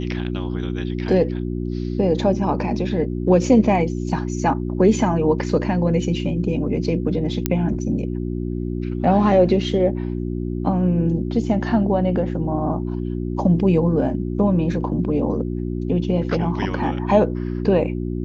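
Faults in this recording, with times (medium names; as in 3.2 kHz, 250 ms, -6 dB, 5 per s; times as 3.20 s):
hum 60 Hz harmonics 6 -25 dBFS
7.46 s: pop -4 dBFS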